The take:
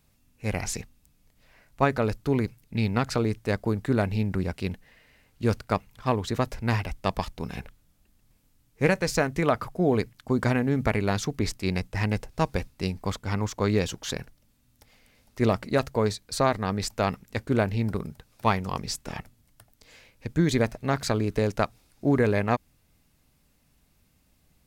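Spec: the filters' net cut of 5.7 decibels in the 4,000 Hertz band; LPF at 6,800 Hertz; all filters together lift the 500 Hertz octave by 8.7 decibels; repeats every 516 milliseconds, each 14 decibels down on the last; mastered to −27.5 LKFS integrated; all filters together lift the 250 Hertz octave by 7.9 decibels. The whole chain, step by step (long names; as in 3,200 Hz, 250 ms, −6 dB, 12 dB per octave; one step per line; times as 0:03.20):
low-pass filter 6,800 Hz
parametric band 250 Hz +7.5 dB
parametric band 500 Hz +8.5 dB
parametric band 4,000 Hz −6.5 dB
repeating echo 516 ms, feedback 20%, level −14 dB
level −6.5 dB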